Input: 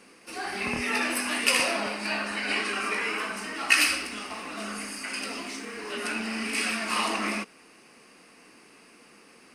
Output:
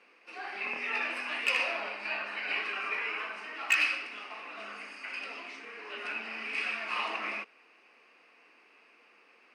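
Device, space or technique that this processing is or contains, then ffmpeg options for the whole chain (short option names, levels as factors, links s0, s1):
megaphone: -af "highpass=480,lowpass=3100,equalizer=f=2500:t=o:w=0.36:g=6,asoftclip=type=hard:threshold=0.251,volume=0.501"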